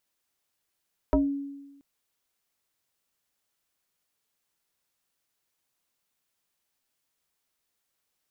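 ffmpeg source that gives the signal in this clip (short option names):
-f lavfi -i "aevalsrc='0.141*pow(10,-3*t/1.12)*sin(2*PI*280*t+2*pow(10,-3*t/0.24)*sin(2*PI*1.2*280*t))':d=0.68:s=44100"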